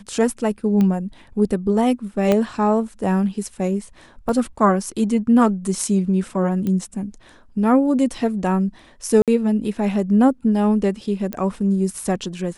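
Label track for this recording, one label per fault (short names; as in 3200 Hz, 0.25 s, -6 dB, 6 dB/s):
0.810000	0.810000	pop -11 dBFS
2.320000	2.320000	pop -6 dBFS
4.290000	4.290000	gap 2.4 ms
6.670000	6.670000	pop -14 dBFS
9.220000	9.280000	gap 57 ms
11.330000	11.330000	pop -11 dBFS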